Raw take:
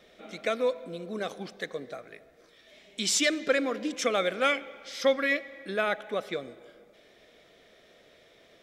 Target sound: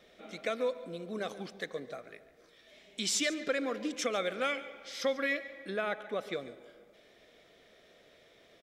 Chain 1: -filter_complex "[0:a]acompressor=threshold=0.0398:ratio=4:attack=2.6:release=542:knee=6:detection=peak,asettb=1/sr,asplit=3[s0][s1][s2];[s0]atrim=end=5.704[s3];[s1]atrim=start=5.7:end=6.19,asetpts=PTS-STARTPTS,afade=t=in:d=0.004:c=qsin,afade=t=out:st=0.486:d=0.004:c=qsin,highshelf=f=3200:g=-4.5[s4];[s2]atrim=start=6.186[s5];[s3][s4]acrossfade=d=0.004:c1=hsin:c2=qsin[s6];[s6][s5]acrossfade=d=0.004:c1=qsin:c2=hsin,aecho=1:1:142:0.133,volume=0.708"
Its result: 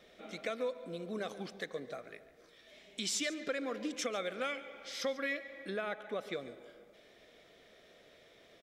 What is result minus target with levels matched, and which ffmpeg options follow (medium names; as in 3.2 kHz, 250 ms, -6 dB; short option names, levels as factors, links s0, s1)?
compression: peak gain reduction +5 dB
-filter_complex "[0:a]acompressor=threshold=0.0891:ratio=4:attack=2.6:release=542:knee=6:detection=peak,asettb=1/sr,asplit=3[s0][s1][s2];[s0]atrim=end=5.704[s3];[s1]atrim=start=5.7:end=6.19,asetpts=PTS-STARTPTS,afade=t=in:d=0.004:c=qsin,afade=t=out:st=0.486:d=0.004:c=qsin,highshelf=f=3200:g=-4.5[s4];[s2]atrim=start=6.186[s5];[s3][s4]acrossfade=d=0.004:c1=hsin:c2=qsin[s6];[s6][s5]acrossfade=d=0.004:c1=qsin:c2=hsin,aecho=1:1:142:0.133,volume=0.708"